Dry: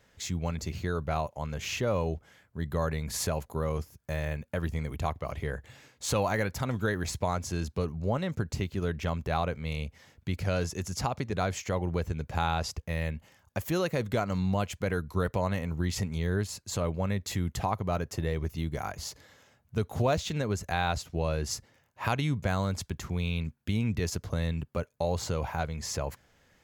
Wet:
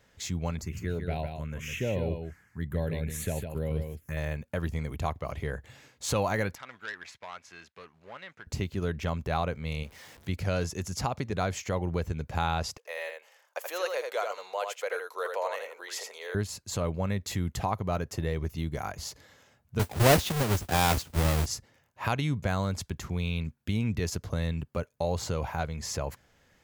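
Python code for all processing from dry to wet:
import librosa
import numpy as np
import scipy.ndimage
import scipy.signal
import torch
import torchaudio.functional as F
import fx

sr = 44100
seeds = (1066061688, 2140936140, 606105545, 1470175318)

y = fx.chain(x, sr, fx.highpass(hz=47.0, slope=12),
    fx.env_phaser(low_hz=430.0, high_hz=1200.0, full_db=-26.5),
    fx.echo_single(ms=154, db=-6.5), at=(0.61, 4.17))
y = fx.chain(y, sr, fx.law_mismatch(coded='A'),
    fx.bandpass_q(hz=2000.0, q=1.4),
    fx.transformer_sat(knee_hz=2100.0), at=(6.55, 8.47))
y = fx.chain(y, sr, fx.zero_step(step_db=-47.0),
    fx.low_shelf(hz=230.0, db=-8.5), at=(9.83, 10.29))
y = fx.chain(y, sr, fx.ellip_highpass(hz=470.0, order=4, stop_db=70),
    fx.echo_single(ms=81, db=-5.0), at=(12.77, 16.35))
y = fx.chain(y, sr, fx.halfwave_hold(),
    fx.mod_noise(seeds[0], snr_db=14),
    fx.band_widen(depth_pct=70), at=(19.79, 21.46))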